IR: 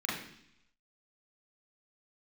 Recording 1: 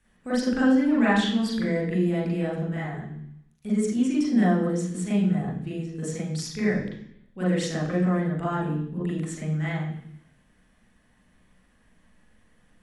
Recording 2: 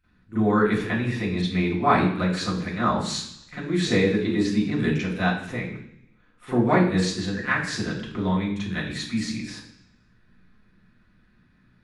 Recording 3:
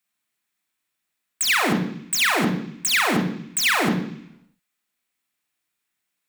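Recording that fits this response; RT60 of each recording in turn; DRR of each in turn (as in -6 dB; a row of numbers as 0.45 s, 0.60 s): 1; 0.70 s, 0.70 s, 0.70 s; -6.0 dB, -15.5 dB, 1.5 dB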